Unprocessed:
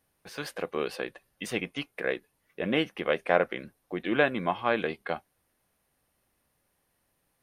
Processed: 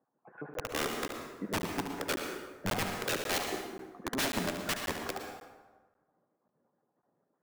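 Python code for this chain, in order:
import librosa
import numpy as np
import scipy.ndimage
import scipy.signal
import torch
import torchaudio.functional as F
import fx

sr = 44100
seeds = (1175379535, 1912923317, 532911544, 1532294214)

p1 = fx.spec_dropout(x, sr, seeds[0], share_pct=43)
p2 = scipy.signal.sosfilt(scipy.signal.bessel(6, 830.0, 'lowpass', norm='mag', fs=sr, output='sos'), p1)
p3 = fx.dereverb_blind(p2, sr, rt60_s=0.86)
p4 = scipy.signal.sosfilt(scipy.signal.butter(4, 140.0, 'highpass', fs=sr, output='sos'), p3)
p5 = fx.low_shelf(p4, sr, hz=190.0, db=-5.0)
p6 = fx.rider(p5, sr, range_db=5, speed_s=0.5)
p7 = p5 + F.gain(torch.from_numpy(p6), -2.0).numpy()
p8 = (np.mod(10.0 ** (24.0 / 20.0) * p7 + 1.0, 2.0) - 1.0) / 10.0 ** (24.0 / 20.0)
p9 = p8 + fx.echo_single(p8, sr, ms=72, db=-8.5, dry=0)
p10 = fx.rev_plate(p9, sr, seeds[1], rt60_s=1.3, hf_ratio=0.6, predelay_ms=100, drr_db=4.0)
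p11 = fx.buffer_crackle(p10, sr, first_s=0.54, period_s=0.54, block=512, kind='zero')
y = F.gain(torch.from_numpy(p11), -2.0).numpy()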